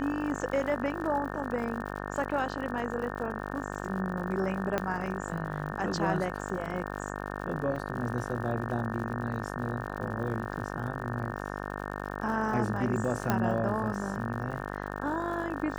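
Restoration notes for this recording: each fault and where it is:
buzz 50 Hz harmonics 36 -37 dBFS
crackle 100/s -39 dBFS
4.78 pop -14 dBFS
7.76 gap 3.5 ms
13.3 pop -12 dBFS

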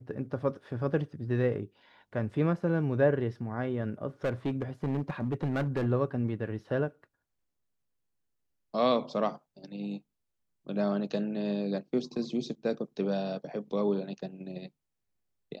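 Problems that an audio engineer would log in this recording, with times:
4.24–5.87 clipped -25.5 dBFS

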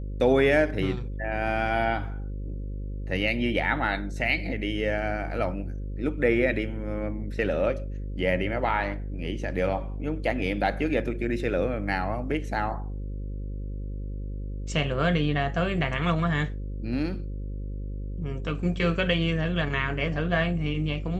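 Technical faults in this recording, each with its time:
buzz 50 Hz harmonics 11 -33 dBFS

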